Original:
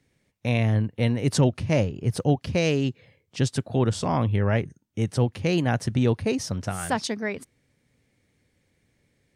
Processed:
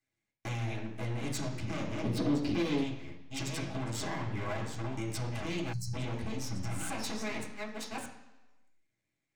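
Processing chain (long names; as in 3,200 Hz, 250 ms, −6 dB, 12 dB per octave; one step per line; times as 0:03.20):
delay that plays each chunk backwards 620 ms, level −11.5 dB
mains-hum notches 50/100/150/200/250/300/350/400 Hz
noise gate −43 dBFS, range −17 dB
half-wave rectification
0:06.23–0:06.79: low-shelf EQ 150 Hz +10.5 dB
downward compressor 6 to 1, threshold −31 dBFS, peak gain reduction 14.5 dB
convolution reverb RT60 1.1 s, pre-delay 3 ms, DRR −4 dB
0:05.73–0:05.94: gain on a spectral selection 210–4,000 Hz −27 dB
brickwall limiter −26 dBFS, peak gain reduction 6.5 dB
0:02.04–0:02.84: graphic EQ with 10 bands 250 Hz +9 dB, 500 Hz +4 dB, 4,000 Hz +5 dB, 8,000 Hz −6 dB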